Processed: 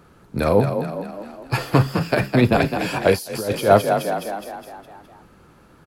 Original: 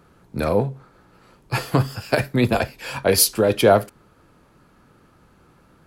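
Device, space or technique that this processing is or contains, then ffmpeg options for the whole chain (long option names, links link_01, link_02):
de-esser from a sidechain: -filter_complex "[0:a]asettb=1/sr,asplit=3[link_01][link_02][link_03];[link_01]atrim=end=1.574[link_04];[link_02]atrim=start=1.57:end=2.61,asetpts=PTS-STARTPTS,afade=type=in:duration=0.004:curve=qsin,afade=type=out:start_time=1.036:duration=0.004:curve=qsin,equalizer=frequency=10000:width=0.44:gain=-6[link_05];[link_03]atrim=start=2.606[link_06];[link_04][link_05]acrossfade=duration=0.004:curve1=hsin:curve2=qsin[link_07];[link_07][link_06]acrossfade=duration=0.004:curve1=qsin:curve2=hsin,asplit=8[link_08][link_09][link_10][link_11][link_12][link_13][link_14][link_15];[link_09]adelay=207,afreqshift=33,volume=-8dB[link_16];[link_10]adelay=414,afreqshift=66,volume=-13.2dB[link_17];[link_11]adelay=621,afreqshift=99,volume=-18.4dB[link_18];[link_12]adelay=828,afreqshift=132,volume=-23.6dB[link_19];[link_13]adelay=1035,afreqshift=165,volume=-28.8dB[link_20];[link_14]adelay=1242,afreqshift=198,volume=-34dB[link_21];[link_15]adelay=1449,afreqshift=231,volume=-39.2dB[link_22];[link_08][link_16][link_17][link_18][link_19][link_20][link_21][link_22]amix=inputs=8:normalize=0,asplit=2[link_23][link_24];[link_24]highpass=6200,apad=whole_len=322349[link_25];[link_23][link_25]sidechaincompress=threshold=-36dB:ratio=8:attack=3:release=74,volume=3dB"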